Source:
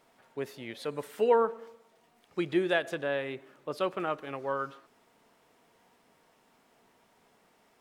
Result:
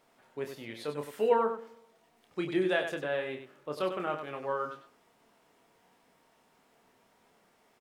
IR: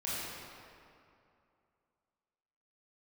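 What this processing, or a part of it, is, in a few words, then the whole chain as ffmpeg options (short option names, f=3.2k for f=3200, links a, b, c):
slapback doubling: -filter_complex "[0:a]asplit=3[a][b][c];[b]adelay=27,volume=-6.5dB[d];[c]adelay=97,volume=-8dB[e];[a][d][e]amix=inputs=3:normalize=0,volume=-2.5dB"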